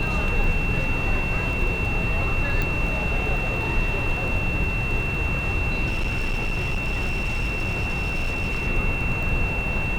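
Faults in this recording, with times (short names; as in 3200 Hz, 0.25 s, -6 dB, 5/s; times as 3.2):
crackle 14/s -30 dBFS
tone 2700 Hz -27 dBFS
2.62 pop
5.86–8.68 clipped -20.5 dBFS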